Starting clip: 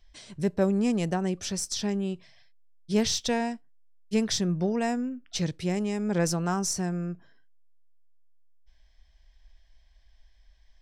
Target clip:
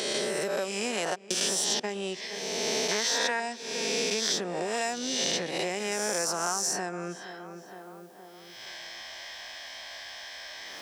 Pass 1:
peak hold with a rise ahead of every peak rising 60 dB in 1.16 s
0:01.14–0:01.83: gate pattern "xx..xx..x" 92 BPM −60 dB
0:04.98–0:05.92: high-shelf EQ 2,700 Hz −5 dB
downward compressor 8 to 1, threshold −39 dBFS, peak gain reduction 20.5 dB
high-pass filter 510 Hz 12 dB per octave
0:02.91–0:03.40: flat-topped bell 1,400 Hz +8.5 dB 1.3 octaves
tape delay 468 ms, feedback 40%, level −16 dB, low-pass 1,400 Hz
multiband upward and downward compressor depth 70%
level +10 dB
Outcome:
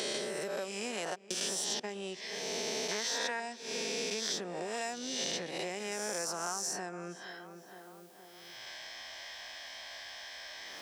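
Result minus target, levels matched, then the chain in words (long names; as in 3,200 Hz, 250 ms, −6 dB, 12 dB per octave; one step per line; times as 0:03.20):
downward compressor: peak gain reduction +7 dB
peak hold with a rise ahead of every peak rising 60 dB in 1.16 s
0:01.14–0:01.83: gate pattern "xx..xx..x" 92 BPM −60 dB
0:04.98–0:05.92: high-shelf EQ 2,700 Hz −5 dB
downward compressor 8 to 1, threshold −31 dBFS, peak gain reduction 13.5 dB
high-pass filter 510 Hz 12 dB per octave
0:02.91–0:03.40: flat-topped bell 1,400 Hz +8.5 dB 1.3 octaves
tape delay 468 ms, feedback 40%, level −16 dB, low-pass 1,400 Hz
multiband upward and downward compressor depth 70%
level +10 dB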